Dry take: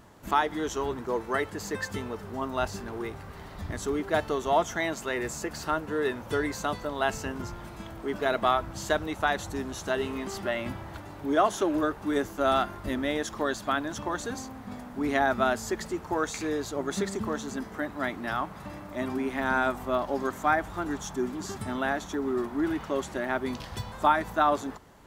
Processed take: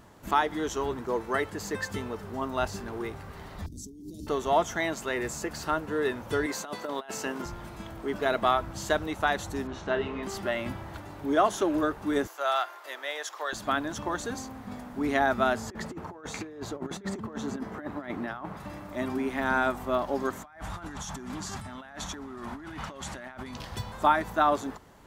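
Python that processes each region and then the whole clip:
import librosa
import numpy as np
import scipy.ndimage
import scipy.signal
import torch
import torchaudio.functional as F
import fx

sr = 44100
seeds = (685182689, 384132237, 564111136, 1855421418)

y = fx.chain(x, sr, fx.ellip_bandstop(low_hz=290.0, high_hz=5300.0, order=3, stop_db=80),
    fx.hum_notches(base_hz=50, count=7),
    fx.over_compress(threshold_db=-43.0, ratio=-1.0), at=(3.66, 4.27))
y = fx.chain(y, sr, fx.highpass(hz=260.0, slope=12),
    fx.over_compress(threshold_db=-33.0, ratio=-0.5), at=(6.46, 7.46))
y = fx.chain(y, sr, fx.lowpass(hz=3100.0, slope=12),
    fx.doubler(ms=36.0, db=-8.5), at=(9.67, 10.23))
y = fx.chain(y, sr, fx.bessel_highpass(hz=770.0, order=6),
    fx.peak_eq(hz=9200.0, db=-6.5, octaves=0.21), at=(12.27, 13.53))
y = fx.chain(y, sr, fx.highpass(hz=70.0, slope=12),
    fx.high_shelf(hz=3200.0, db=-11.5),
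    fx.over_compress(threshold_db=-35.0, ratio=-0.5), at=(15.56, 18.57))
y = fx.chain(y, sr, fx.lowpass(hz=11000.0, slope=12),
    fx.peak_eq(hz=370.0, db=-11.0, octaves=0.98),
    fx.over_compress(threshold_db=-41.0, ratio=-1.0), at=(20.43, 23.57))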